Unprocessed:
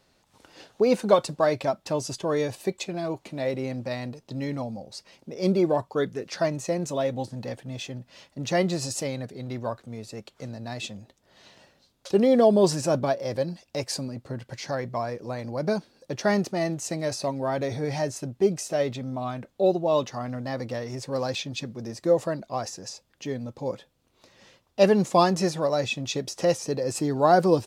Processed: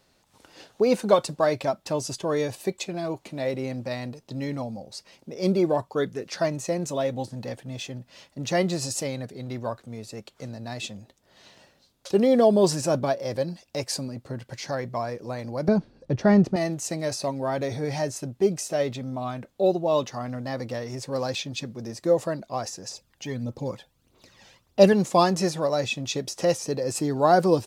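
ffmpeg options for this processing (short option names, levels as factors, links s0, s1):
-filter_complex "[0:a]asettb=1/sr,asplit=3[s0][s1][s2];[s0]atrim=end=15.684[s3];[s1]atrim=start=15.68:end=16.56,asetpts=PTS-STARTPTS,afade=t=in:d=0.004:c=qsin,afade=t=out:st=0.876:d=0.004:c=qsin,aemphasis=mode=reproduction:type=riaa[s4];[s2]atrim=start=16.556[s5];[s3][s4]acrossfade=d=0.004:c1=hsin:c2=qsin[s6];[s6][s5]acrossfade=d=0.004:c1=qsin:c2=hsin,asettb=1/sr,asplit=3[s7][s8][s9];[s7]atrim=end=22.914[s10];[s8]atrim=start=22.91:end=24.93,asetpts=PTS-STARTPTS,afade=t=in:d=0.004:c=qsin,afade=t=out:st=2.016:d=0.004:c=qsin,aphaser=in_gain=1:out_gain=1:delay=1.4:decay=0.53:speed=1.6:type=triangular[s11];[s9]atrim=start=24.926[s12];[s10][s11]acrossfade=d=0.004:c1=hsin:c2=qsin[s13];[s13][s12]acrossfade=d=0.004:c1=qsin:c2=hsin,highshelf=f=7700:g=4"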